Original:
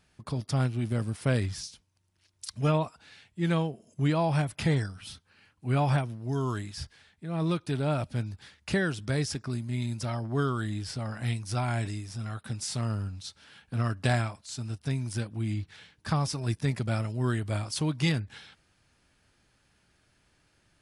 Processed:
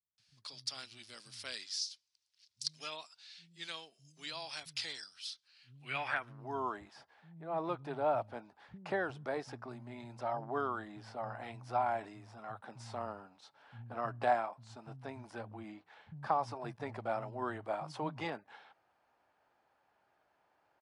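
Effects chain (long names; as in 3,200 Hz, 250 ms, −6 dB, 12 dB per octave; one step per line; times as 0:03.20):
band-pass filter sweep 4,700 Hz → 800 Hz, 0:05.40–0:06.40
multiband delay without the direct sound lows, highs 180 ms, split 170 Hz
level +5 dB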